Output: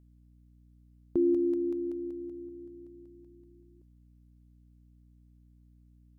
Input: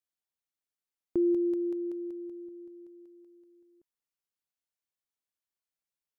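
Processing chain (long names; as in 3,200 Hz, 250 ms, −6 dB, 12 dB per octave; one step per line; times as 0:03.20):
pitch-shifted copies added −4 semitones −9 dB
mains hum 60 Hz, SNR 23 dB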